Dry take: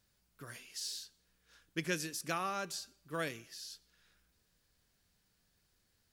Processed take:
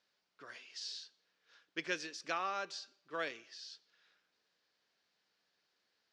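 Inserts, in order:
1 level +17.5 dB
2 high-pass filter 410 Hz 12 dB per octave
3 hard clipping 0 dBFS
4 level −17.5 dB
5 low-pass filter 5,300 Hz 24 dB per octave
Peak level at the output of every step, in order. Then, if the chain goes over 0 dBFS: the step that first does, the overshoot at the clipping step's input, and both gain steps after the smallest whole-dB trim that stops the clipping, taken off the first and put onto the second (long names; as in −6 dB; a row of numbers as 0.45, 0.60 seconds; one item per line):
−3.0, −2.0, −2.0, −19.5, −20.5 dBFS
no step passes full scale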